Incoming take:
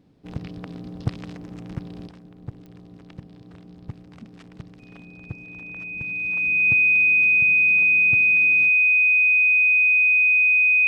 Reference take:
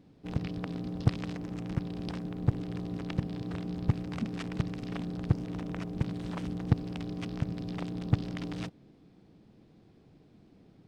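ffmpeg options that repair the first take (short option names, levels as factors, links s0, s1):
-af "adeclick=t=4,bandreject=f=2500:w=30,asetnsamples=n=441:p=0,asendcmd='2.07 volume volume 9dB',volume=1"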